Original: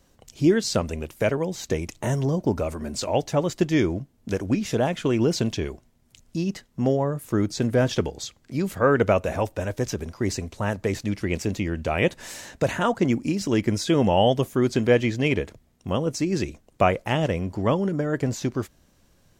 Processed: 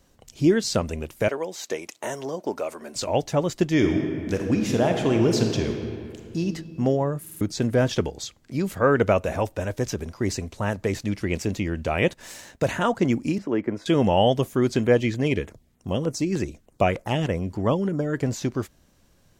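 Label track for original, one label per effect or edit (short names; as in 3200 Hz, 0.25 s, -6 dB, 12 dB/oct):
1.280000	2.960000	HPF 420 Hz
3.730000	6.400000	reverb throw, RT60 2.4 s, DRR 3 dB
7.210000	7.210000	stutter in place 0.05 s, 4 plays
12.130000	12.660000	G.711 law mismatch coded by A
13.380000	13.860000	three-band isolator lows -13 dB, under 230 Hz, highs -23 dB, over 2000 Hz
14.840000	18.170000	LFO notch saw down 3.3 Hz 500–6100 Hz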